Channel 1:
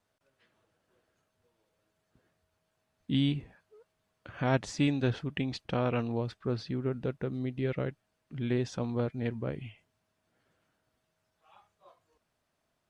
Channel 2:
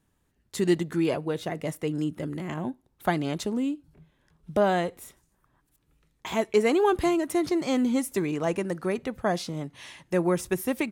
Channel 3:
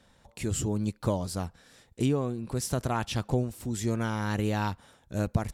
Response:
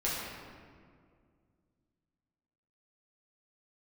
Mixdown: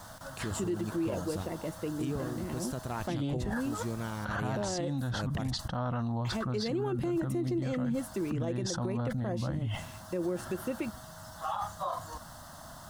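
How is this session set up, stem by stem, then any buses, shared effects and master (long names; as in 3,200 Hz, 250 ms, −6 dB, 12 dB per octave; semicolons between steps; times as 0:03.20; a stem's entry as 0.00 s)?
−5.5 dB, 0.00 s, no send, phaser with its sweep stopped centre 1,000 Hz, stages 4; envelope flattener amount 100%
−11.5 dB, 0.00 s, no send, hollow resonant body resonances 220/340/510/2,700 Hz, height 11 dB
+2.0 dB, 0.00 s, no send, automatic ducking −9 dB, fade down 0.25 s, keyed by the second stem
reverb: not used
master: brickwall limiter −24.5 dBFS, peak gain reduction 11.5 dB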